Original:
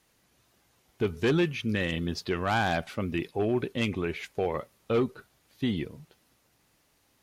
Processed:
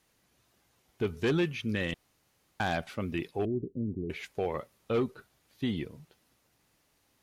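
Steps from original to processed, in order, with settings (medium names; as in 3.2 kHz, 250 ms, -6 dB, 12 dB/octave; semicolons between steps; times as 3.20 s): 1.94–2.60 s: room tone; 3.45–4.10 s: inverse Chebyshev low-pass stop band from 1.7 kHz, stop band 70 dB; trim -3 dB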